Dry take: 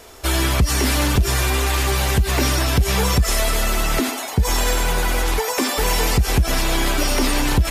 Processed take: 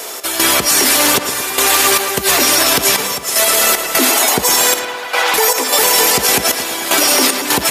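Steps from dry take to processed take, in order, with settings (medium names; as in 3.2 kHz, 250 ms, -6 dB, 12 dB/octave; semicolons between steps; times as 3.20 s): compression, threshold -18 dBFS, peak gain reduction 6.5 dB; high-pass 350 Hz 12 dB/octave; treble shelf 5.8 kHz +9 dB; trance gate "x.xxxx..x" 76 bpm -12 dB; 4.79–5.34 s: three-band isolator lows -23 dB, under 480 Hz, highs -18 dB, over 4.5 kHz; filtered feedback delay 111 ms, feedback 58%, low-pass 3.5 kHz, level -11 dB; loudness maximiser +15.5 dB; trim -1 dB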